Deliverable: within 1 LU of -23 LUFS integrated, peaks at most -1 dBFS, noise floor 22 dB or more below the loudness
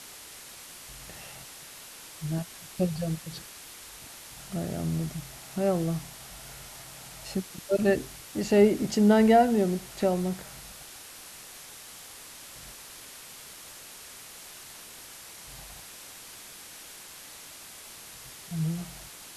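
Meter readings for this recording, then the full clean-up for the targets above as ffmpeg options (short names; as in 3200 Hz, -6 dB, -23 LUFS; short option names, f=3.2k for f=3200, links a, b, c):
noise floor -47 dBFS; noise floor target -49 dBFS; loudness -27.0 LUFS; peak -9.5 dBFS; loudness target -23.0 LUFS
-> -af "afftdn=nr=6:nf=-47"
-af "volume=4dB"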